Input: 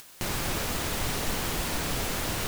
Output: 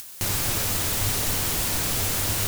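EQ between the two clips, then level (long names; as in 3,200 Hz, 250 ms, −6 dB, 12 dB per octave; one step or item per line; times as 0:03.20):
parametric band 100 Hz +13.5 dB 0.23 octaves
high-shelf EQ 4,600 Hz +11 dB
0.0 dB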